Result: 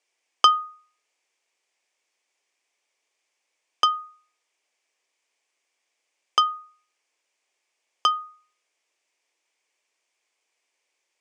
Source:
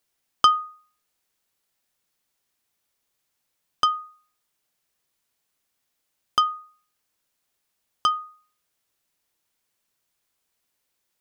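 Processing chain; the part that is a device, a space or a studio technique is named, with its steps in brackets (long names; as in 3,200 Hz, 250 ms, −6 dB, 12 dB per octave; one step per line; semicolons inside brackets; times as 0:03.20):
phone speaker on a table (loudspeaker in its box 350–7,800 Hz, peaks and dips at 1,400 Hz −7 dB, 2,300 Hz +7 dB, 4,000 Hz −6 dB)
level +3.5 dB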